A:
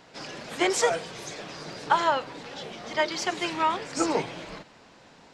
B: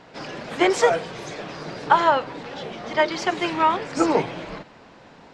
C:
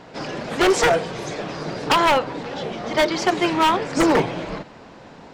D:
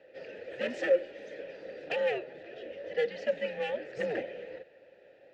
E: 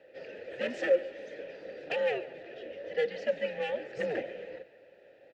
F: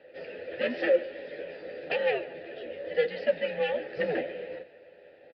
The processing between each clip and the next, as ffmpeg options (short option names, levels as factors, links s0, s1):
-af "lowpass=f=2300:p=1,volume=2.11"
-af "equalizer=f=2400:w=0.44:g=-3.5,aeval=exprs='0.15*(abs(mod(val(0)/0.15+3,4)-2)-1)':c=same,volume=2"
-filter_complex "[0:a]afreqshift=-140,asplit=3[s0][s1][s2];[s0]bandpass=f=530:t=q:w=8,volume=1[s3];[s1]bandpass=f=1840:t=q:w=8,volume=0.501[s4];[s2]bandpass=f=2480:t=q:w=8,volume=0.355[s5];[s3][s4][s5]amix=inputs=3:normalize=0,volume=0.708"
-af "aecho=1:1:142|284|426|568:0.119|0.0582|0.0285|0.014"
-filter_complex "[0:a]asplit=2[s0][s1];[s1]adelay=12,volume=0.473[s2];[s0][s2]amix=inputs=2:normalize=0,aresample=11025,aresample=44100,volume=1.41"